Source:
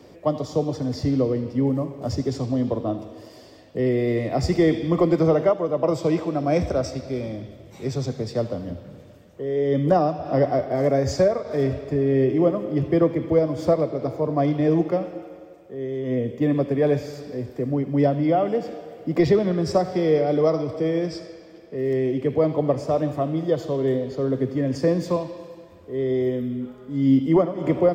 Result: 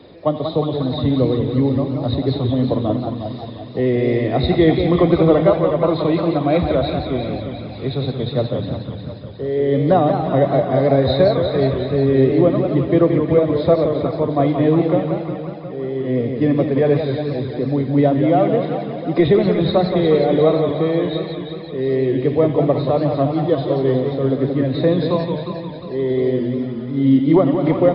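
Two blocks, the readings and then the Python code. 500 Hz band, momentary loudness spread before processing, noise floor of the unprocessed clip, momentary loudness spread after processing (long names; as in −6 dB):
+5.0 dB, 13 LU, −46 dBFS, 10 LU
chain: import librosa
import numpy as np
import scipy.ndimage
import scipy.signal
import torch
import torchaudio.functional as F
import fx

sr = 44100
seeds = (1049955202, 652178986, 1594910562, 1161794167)

y = fx.freq_compress(x, sr, knee_hz=3400.0, ratio=4.0)
y = fx.echo_feedback(y, sr, ms=357, feedback_pct=53, wet_db=-10.0)
y = fx.echo_warbled(y, sr, ms=179, feedback_pct=62, rate_hz=2.8, cents=162, wet_db=-7)
y = y * librosa.db_to_amplitude(4.0)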